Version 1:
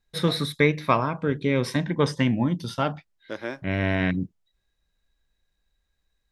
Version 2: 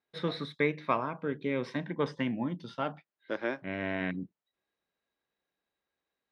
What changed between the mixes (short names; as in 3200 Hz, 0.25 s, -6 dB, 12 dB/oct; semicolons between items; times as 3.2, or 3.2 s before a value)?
first voice -7.5 dB; master: add BPF 190–3300 Hz